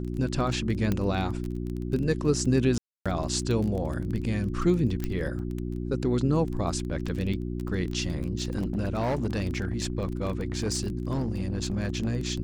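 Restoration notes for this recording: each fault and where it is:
surface crackle 20 per second −31 dBFS
mains hum 60 Hz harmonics 6 −32 dBFS
0:00.92: click −14 dBFS
0:02.78–0:03.06: drop-out 276 ms
0:05.04: click −16 dBFS
0:08.35–0:12.15: clipping −23 dBFS

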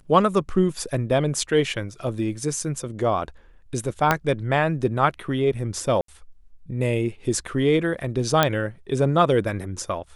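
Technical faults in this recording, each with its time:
0:04.11: click −4 dBFS
0:06.01–0:06.08: drop-out 73 ms
0:08.43: click −3 dBFS

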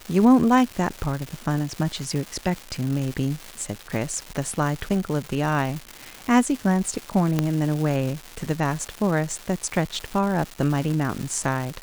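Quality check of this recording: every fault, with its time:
surface crackle 480 per second −28 dBFS
0:07.39: click −8 dBFS

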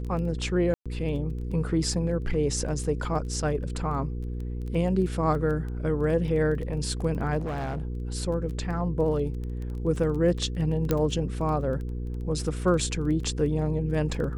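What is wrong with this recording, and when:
surface crackle 11 per second −33 dBFS
mains hum 60 Hz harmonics 8 −32 dBFS
0:00.74–0:00.86: drop-out 116 ms
0:07.38–0:07.85: clipping −27.5 dBFS
0:10.91: click −10 dBFS

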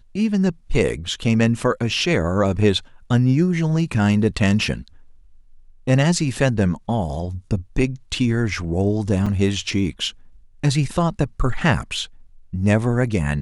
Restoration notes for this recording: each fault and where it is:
0:09.26: drop-out 4.9 ms

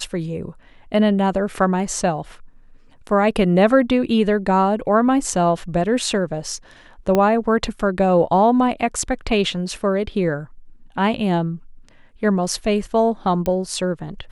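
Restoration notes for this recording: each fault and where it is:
0:07.15: click −6 dBFS
0:13.46: click −11 dBFS

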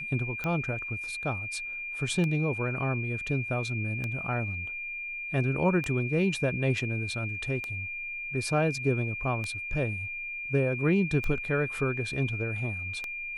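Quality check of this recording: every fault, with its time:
scratch tick 33 1/3 rpm −19 dBFS
whistle 2,400 Hz −34 dBFS

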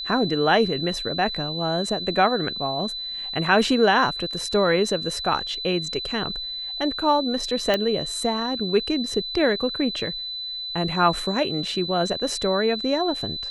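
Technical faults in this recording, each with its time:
whistle 4,000 Hz −29 dBFS
0:07.74: click −8 dBFS

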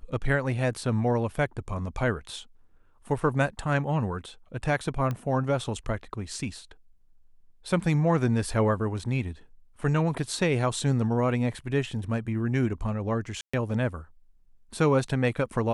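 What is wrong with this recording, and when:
0:05.11: click −19 dBFS
0:13.41–0:13.54: drop-out 125 ms

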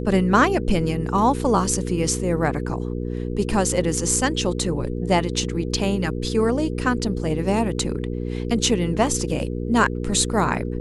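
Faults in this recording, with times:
mains hum 60 Hz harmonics 8 −27 dBFS

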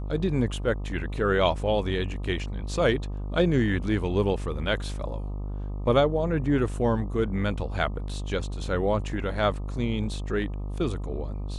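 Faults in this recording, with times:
mains buzz 50 Hz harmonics 25 −32 dBFS

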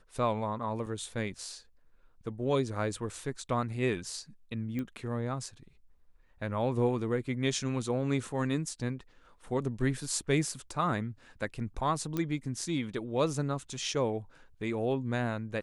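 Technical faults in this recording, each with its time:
0:00.86: drop-out 2.8 ms
0:04.79: click −24 dBFS
0:12.17: click −19 dBFS

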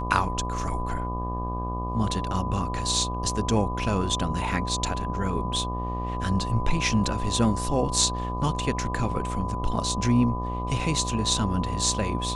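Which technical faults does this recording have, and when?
mains buzz 60 Hz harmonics 20 −31 dBFS
whistle 1,000 Hz −32 dBFS

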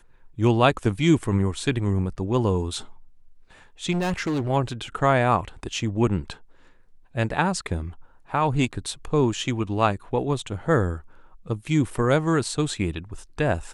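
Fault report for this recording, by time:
0:03.91–0:04.50: clipping −21.5 dBFS

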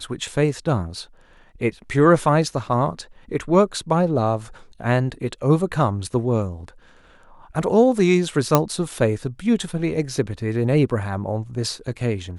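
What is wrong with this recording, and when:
0:08.55: click 0 dBFS

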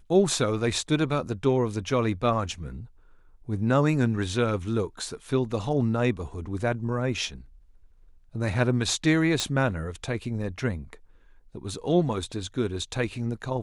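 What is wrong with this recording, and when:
0:09.40: click −11 dBFS

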